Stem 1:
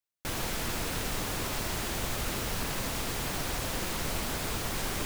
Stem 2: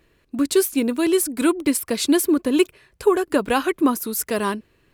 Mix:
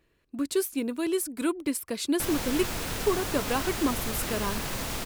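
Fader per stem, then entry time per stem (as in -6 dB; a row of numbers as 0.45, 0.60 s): +0.5, -9.0 dB; 1.95, 0.00 s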